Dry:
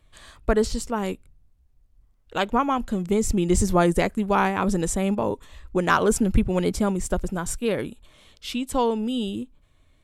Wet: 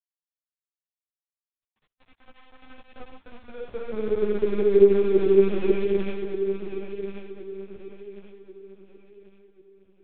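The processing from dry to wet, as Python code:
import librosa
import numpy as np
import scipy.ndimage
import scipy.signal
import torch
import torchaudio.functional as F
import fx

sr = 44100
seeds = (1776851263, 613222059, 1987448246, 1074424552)

y = scipy.signal.medfilt(x, 25)
y = scipy.signal.sosfilt(scipy.signal.butter(4, 41.0, 'highpass', fs=sr, output='sos'), y)
y = fx.peak_eq(y, sr, hz=1200.0, db=-6.0, octaves=0.29)
y = fx.over_compress(y, sr, threshold_db=-28.0, ratio=-0.5)
y = fx.filter_lfo_highpass(y, sr, shape='saw_down', hz=2.8, low_hz=300.0, high_hz=2600.0, q=3.5)
y = fx.paulstretch(y, sr, seeds[0], factor=20.0, window_s=0.1, from_s=9.0)
y = np.sign(y) * np.maximum(np.abs(y) - 10.0 ** (-35.5 / 20.0), 0.0)
y = fx.air_absorb(y, sr, metres=58.0)
y = fx.echo_feedback(y, sr, ms=1086, feedback_pct=36, wet_db=-9.5)
y = fx.lpc_vocoder(y, sr, seeds[1], excitation='pitch_kept', order=8)
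y = fx.ensemble(y, sr)
y = y * librosa.db_to_amplitude(6.5)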